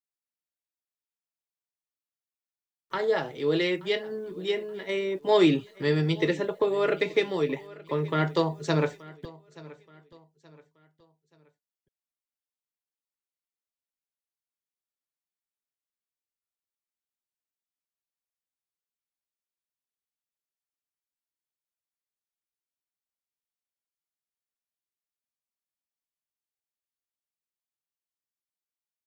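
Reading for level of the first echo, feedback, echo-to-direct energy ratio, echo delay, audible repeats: -20.5 dB, 37%, -20.0 dB, 0.877 s, 2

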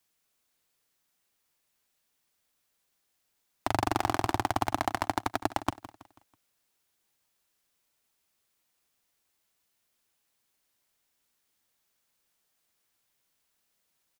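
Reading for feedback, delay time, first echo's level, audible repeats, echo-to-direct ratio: 41%, 0.163 s, -15.5 dB, 3, -14.5 dB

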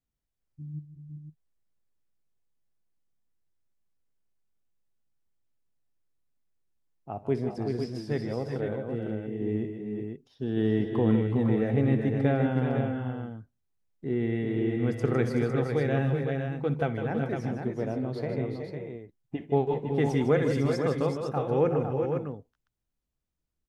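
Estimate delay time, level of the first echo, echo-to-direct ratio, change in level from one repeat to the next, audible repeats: 60 ms, -16.5 dB, -2.0 dB, no steady repeat, 4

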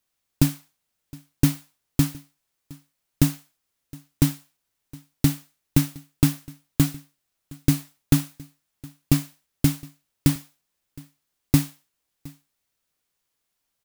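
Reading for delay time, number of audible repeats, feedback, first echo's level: 0.715 s, 1, no steady repeat, -23.0 dB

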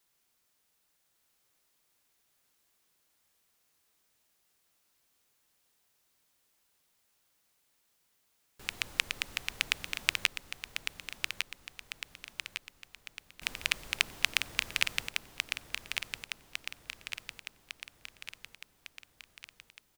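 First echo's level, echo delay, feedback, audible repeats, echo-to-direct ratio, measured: -6.0 dB, 1.154 s, 55%, 6, -4.5 dB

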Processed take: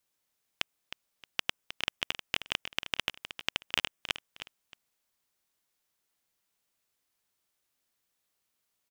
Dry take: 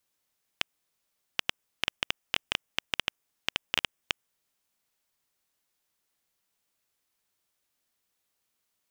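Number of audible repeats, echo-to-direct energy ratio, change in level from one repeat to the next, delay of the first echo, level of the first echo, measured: 2, -10.5 dB, -11.0 dB, 0.312 s, -11.0 dB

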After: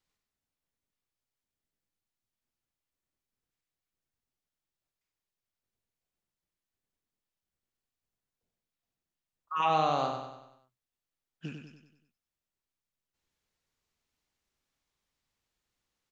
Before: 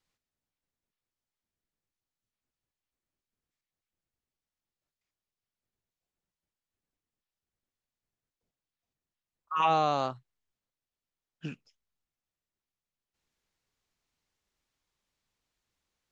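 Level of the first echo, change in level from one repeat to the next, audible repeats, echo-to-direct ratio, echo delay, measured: -6.0 dB, -6.0 dB, 5, -5.0 dB, 95 ms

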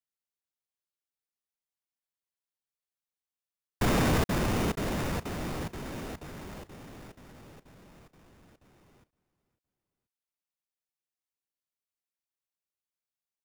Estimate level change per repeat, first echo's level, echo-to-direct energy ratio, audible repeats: -7.0 dB, -21.0 dB, -20.0 dB, 2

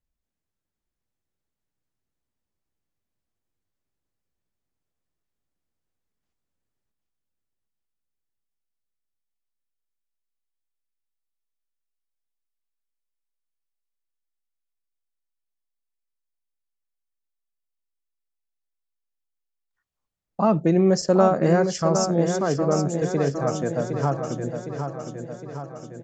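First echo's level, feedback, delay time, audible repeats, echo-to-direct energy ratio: -7.0 dB, 58%, 0.761 s, 6, -5.0 dB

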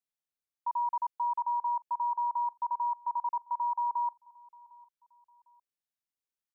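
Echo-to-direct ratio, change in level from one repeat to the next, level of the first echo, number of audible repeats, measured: -23.5 dB, -9.0 dB, -24.0 dB, 2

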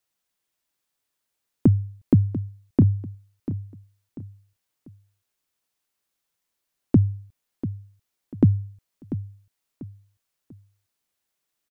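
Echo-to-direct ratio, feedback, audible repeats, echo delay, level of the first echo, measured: -12.0 dB, 34%, 3, 0.692 s, -12.5 dB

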